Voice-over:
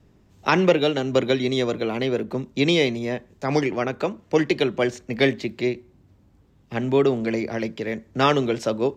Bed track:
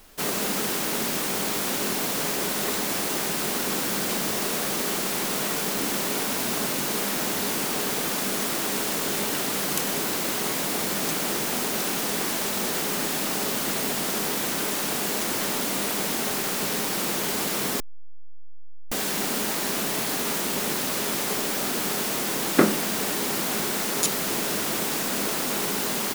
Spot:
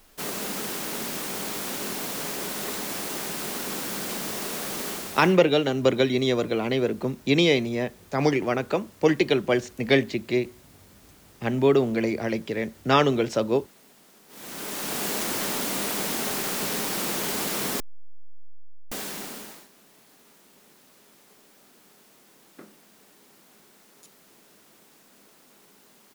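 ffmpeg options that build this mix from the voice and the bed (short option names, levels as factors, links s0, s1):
-filter_complex "[0:a]adelay=4700,volume=0.944[s0];[1:a]volume=12.6,afade=t=out:st=4.88:d=0.5:silence=0.0668344,afade=t=in:st=14.28:d=0.77:silence=0.0446684,afade=t=out:st=18.47:d=1.21:silence=0.0398107[s1];[s0][s1]amix=inputs=2:normalize=0"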